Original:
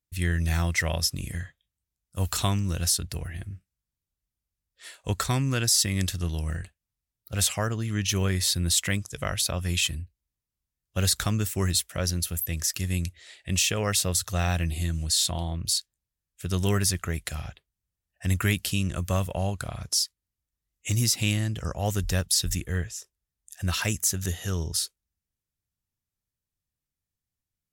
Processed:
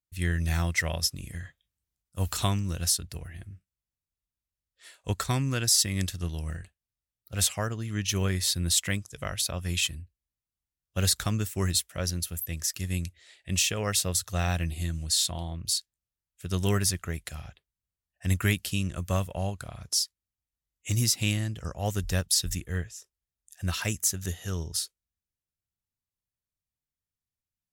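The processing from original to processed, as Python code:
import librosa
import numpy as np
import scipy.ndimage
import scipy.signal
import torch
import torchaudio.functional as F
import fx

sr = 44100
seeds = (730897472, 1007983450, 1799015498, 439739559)

y = fx.transient(x, sr, attack_db=0, sustain_db=6, at=(1.33, 2.52), fade=0.02)
y = fx.upward_expand(y, sr, threshold_db=-33.0, expansion=1.5)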